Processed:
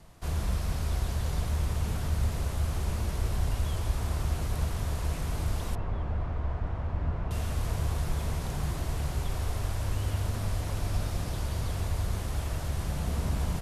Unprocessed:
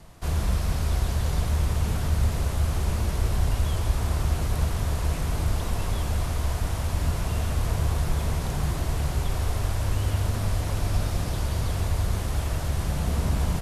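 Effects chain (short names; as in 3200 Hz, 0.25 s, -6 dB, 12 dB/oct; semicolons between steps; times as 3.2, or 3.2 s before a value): 5.75–7.31 LPF 1600 Hz 12 dB/oct; gain -5 dB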